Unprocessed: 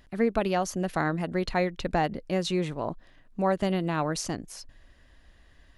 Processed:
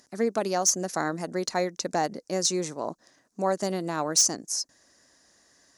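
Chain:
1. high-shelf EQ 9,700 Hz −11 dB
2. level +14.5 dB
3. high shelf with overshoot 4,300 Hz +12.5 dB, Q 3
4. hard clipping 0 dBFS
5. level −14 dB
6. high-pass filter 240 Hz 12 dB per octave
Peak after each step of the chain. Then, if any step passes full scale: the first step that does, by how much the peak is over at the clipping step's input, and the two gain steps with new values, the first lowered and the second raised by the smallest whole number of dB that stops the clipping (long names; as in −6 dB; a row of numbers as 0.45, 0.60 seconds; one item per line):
−11.5, +3.0, +9.5, 0.0, −14.0, −12.5 dBFS
step 2, 9.5 dB
step 2 +4.5 dB, step 5 −4 dB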